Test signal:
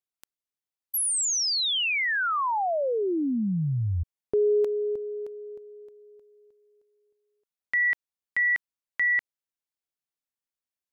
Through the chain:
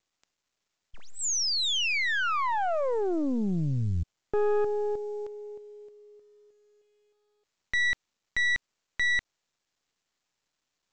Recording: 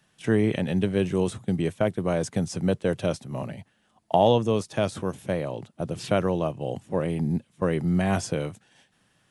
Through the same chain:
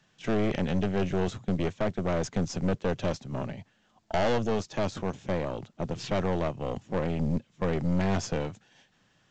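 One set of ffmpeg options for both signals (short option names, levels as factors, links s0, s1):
-af "aeval=exprs='(tanh(17.8*val(0)+0.7)-tanh(0.7))/17.8':c=same,volume=1.33" -ar 16000 -c:a pcm_mulaw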